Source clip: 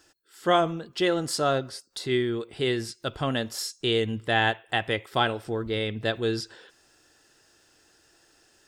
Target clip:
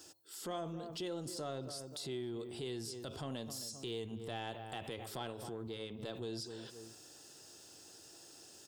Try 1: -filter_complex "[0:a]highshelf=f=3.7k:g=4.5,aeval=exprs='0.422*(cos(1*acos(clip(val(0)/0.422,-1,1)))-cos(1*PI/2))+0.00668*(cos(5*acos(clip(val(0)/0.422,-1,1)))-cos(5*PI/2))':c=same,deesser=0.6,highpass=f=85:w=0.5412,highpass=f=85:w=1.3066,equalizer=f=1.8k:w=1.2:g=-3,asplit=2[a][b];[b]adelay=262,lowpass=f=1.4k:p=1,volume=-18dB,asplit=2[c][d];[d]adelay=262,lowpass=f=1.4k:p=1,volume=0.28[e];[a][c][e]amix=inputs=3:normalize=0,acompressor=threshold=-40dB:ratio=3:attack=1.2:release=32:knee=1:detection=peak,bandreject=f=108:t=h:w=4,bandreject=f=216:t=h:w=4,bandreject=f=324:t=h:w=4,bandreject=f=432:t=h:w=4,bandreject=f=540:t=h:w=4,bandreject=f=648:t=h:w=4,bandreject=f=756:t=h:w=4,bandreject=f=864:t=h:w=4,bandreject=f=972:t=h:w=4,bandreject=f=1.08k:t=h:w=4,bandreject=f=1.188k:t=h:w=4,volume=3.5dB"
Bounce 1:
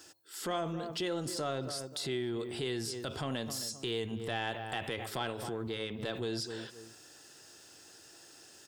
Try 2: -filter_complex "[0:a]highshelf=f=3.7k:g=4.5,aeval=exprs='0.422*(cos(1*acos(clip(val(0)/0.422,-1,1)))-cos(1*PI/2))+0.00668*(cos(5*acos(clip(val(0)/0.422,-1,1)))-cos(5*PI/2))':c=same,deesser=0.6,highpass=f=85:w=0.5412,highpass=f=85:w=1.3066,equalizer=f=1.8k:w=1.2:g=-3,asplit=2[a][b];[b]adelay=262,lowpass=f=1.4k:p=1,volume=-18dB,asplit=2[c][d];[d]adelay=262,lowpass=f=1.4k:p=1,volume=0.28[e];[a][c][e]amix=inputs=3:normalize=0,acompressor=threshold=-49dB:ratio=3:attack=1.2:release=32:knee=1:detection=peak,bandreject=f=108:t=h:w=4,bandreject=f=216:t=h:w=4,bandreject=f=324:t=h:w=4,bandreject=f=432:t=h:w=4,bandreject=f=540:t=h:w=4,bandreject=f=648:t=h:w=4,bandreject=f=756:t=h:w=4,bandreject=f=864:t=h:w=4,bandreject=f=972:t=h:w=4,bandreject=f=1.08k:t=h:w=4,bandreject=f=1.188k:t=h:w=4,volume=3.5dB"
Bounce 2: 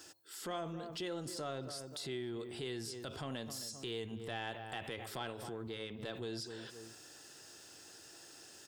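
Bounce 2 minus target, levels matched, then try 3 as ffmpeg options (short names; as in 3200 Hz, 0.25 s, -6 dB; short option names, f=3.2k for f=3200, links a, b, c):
2000 Hz band +5.5 dB
-filter_complex "[0:a]highshelf=f=3.7k:g=4.5,aeval=exprs='0.422*(cos(1*acos(clip(val(0)/0.422,-1,1)))-cos(1*PI/2))+0.00668*(cos(5*acos(clip(val(0)/0.422,-1,1)))-cos(5*PI/2))':c=same,deesser=0.6,highpass=f=85:w=0.5412,highpass=f=85:w=1.3066,equalizer=f=1.8k:w=1.2:g=-11,asplit=2[a][b];[b]adelay=262,lowpass=f=1.4k:p=1,volume=-18dB,asplit=2[c][d];[d]adelay=262,lowpass=f=1.4k:p=1,volume=0.28[e];[a][c][e]amix=inputs=3:normalize=0,acompressor=threshold=-49dB:ratio=3:attack=1.2:release=32:knee=1:detection=peak,bandreject=f=108:t=h:w=4,bandreject=f=216:t=h:w=4,bandreject=f=324:t=h:w=4,bandreject=f=432:t=h:w=4,bandreject=f=540:t=h:w=4,bandreject=f=648:t=h:w=4,bandreject=f=756:t=h:w=4,bandreject=f=864:t=h:w=4,bandreject=f=972:t=h:w=4,bandreject=f=1.08k:t=h:w=4,bandreject=f=1.188k:t=h:w=4,volume=3.5dB"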